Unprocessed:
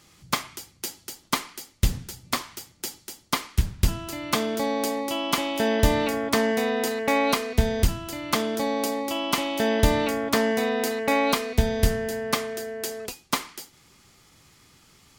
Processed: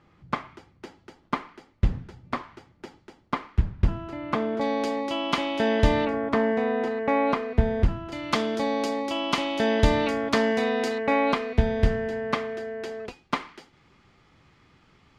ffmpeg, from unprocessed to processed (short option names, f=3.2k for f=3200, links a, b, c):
-af "asetnsamples=n=441:p=0,asendcmd='4.61 lowpass f 3700;6.05 lowpass f 1700;8.12 lowpass f 4700;10.98 lowpass f 2500',lowpass=1.6k"